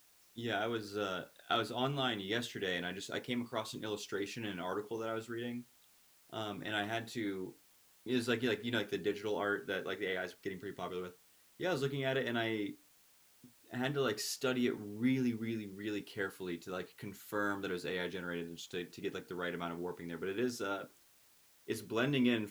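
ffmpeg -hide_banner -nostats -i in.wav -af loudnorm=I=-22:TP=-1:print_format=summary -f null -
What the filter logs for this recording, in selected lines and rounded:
Input Integrated:    -37.7 LUFS
Input True Peak:     -18.6 dBTP
Input LRA:             3.6 LU
Input Threshold:     -48.3 LUFS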